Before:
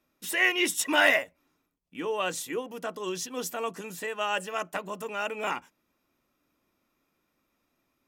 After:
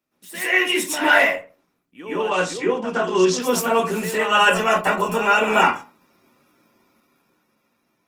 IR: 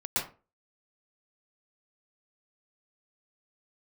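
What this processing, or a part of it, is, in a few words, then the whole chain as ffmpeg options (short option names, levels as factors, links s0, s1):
far-field microphone of a smart speaker: -filter_complex "[0:a]asplit=3[s0][s1][s2];[s0]afade=t=out:st=2.16:d=0.02[s3];[s1]lowpass=f=7400:w=0.5412,lowpass=f=7400:w=1.3066,afade=t=in:st=2.16:d=0.02,afade=t=out:st=3.39:d=0.02[s4];[s2]afade=t=in:st=3.39:d=0.02[s5];[s3][s4][s5]amix=inputs=3:normalize=0[s6];[1:a]atrim=start_sample=2205[s7];[s6][s7]afir=irnorm=-1:irlink=0,highpass=f=110:w=0.5412,highpass=f=110:w=1.3066,dynaudnorm=f=300:g=9:m=6.68,volume=0.891" -ar 48000 -c:a libopus -b:a 20k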